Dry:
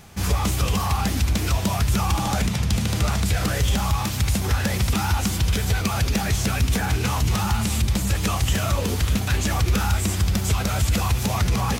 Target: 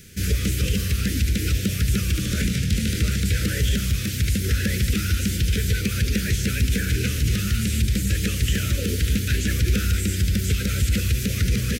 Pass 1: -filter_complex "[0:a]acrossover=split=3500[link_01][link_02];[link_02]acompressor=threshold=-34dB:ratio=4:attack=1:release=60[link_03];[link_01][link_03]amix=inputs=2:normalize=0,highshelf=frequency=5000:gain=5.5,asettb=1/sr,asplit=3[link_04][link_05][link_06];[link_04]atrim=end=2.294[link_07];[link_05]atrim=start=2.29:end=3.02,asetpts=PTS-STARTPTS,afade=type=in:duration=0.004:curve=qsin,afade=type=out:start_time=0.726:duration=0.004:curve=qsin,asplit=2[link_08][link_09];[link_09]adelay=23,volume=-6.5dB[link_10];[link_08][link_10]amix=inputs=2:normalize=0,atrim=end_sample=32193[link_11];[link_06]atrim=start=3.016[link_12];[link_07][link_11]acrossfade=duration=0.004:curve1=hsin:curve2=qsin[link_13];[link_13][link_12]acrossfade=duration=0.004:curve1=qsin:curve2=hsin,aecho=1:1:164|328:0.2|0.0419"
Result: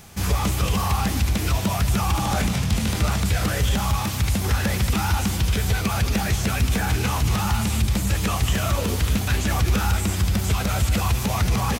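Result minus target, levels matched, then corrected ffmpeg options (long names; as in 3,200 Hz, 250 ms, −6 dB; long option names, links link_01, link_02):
1,000 Hz band +17.0 dB
-filter_complex "[0:a]acrossover=split=3500[link_01][link_02];[link_02]acompressor=threshold=-34dB:ratio=4:attack=1:release=60[link_03];[link_01][link_03]amix=inputs=2:normalize=0,asuperstop=centerf=870:order=8:qfactor=0.87,highshelf=frequency=5000:gain=5.5,asettb=1/sr,asplit=3[link_04][link_05][link_06];[link_04]atrim=end=2.294[link_07];[link_05]atrim=start=2.29:end=3.02,asetpts=PTS-STARTPTS,afade=type=in:duration=0.004:curve=qsin,afade=type=out:start_time=0.726:duration=0.004:curve=qsin,asplit=2[link_08][link_09];[link_09]adelay=23,volume=-6.5dB[link_10];[link_08][link_10]amix=inputs=2:normalize=0,atrim=end_sample=32193[link_11];[link_06]atrim=start=3.016[link_12];[link_07][link_11]acrossfade=duration=0.004:curve1=hsin:curve2=qsin[link_13];[link_13][link_12]acrossfade=duration=0.004:curve1=qsin:curve2=hsin,aecho=1:1:164|328:0.2|0.0419"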